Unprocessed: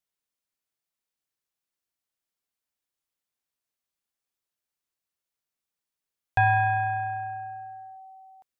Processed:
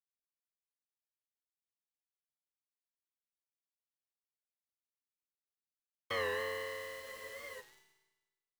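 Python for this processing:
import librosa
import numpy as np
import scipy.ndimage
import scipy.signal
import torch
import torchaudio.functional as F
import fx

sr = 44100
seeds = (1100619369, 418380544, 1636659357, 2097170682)

y = np.r_[np.sort(x[:len(x) // 32 * 32].reshape(-1, 32), axis=1).ravel(), x[len(x) // 32 * 32:]]
y = fx.doppler_pass(y, sr, speed_mps=52, closest_m=5.1, pass_at_s=3.45)
y = scipy.signal.sosfilt(scipy.signal.butter(2, 280.0, 'highpass', fs=sr, output='sos'), y)
y = fx.formant_shift(y, sr, semitones=-3)
y = scipy.signal.sosfilt(scipy.signal.butter(2, 2700.0, 'lowpass', fs=sr, output='sos'), y)
y = fx.peak_eq(y, sr, hz=710.0, db=-14.0, octaves=1.1)
y = fx.quant_dither(y, sr, seeds[0], bits=12, dither='none')
y = fx.rev_schroeder(y, sr, rt60_s=1.2, comb_ms=26, drr_db=1.5)
y = fx.spec_freeze(y, sr, seeds[1], at_s=7.03, hold_s=0.57)
y = fx.record_warp(y, sr, rpm=45.0, depth_cents=100.0)
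y = y * 10.0 ** (18.0 / 20.0)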